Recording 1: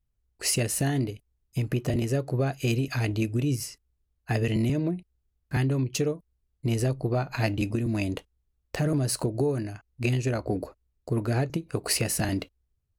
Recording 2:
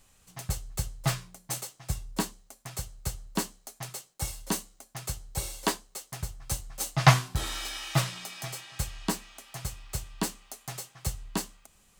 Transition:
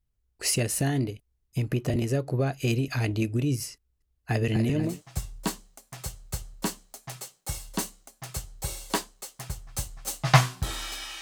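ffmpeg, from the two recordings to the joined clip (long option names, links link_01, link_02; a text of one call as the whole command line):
ffmpeg -i cue0.wav -i cue1.wav -filter_complex "[0:a]asettb=1/sr,asplit=3[link_01][link_02][link_03];[link_01]atrim=end=3.764[link_04];[link_02]atrim=start=3.76:end=5.02,asetpts=PTS-STARTPTS,afade=type=in:duration=0.004:curve=qsin,afade=type=out:start_time=1.256:duration=0.004:curve=qsin,aecho=1:1:244|488|732|976|1220|1464:0.355|0.192|0.103|0.0559|0.0302|0.0163,atrim=end_sample=55566[link_05];[link_03]atrim=start=5.016[link_06];[link_04][link_05]acrossfade=duration=0.004:curve1=hsin:curve2=qsin[link_07];[link_07][link_06]acrossfade=duration=0.004:curve1=qsin:curve2=hsin,apad=whole_dur=11.21,atrim=end=11.21,atrim=end=5.02,asetpts=PTS-STARTPTS[link_08];[1:a]atrim=start=1.55:end=7.94,asetpts=PTS-STARTPTS[link_09];[link_08][link_09]acrossfade=duration=0.2:curve1=tri:curve2=tri" out.wav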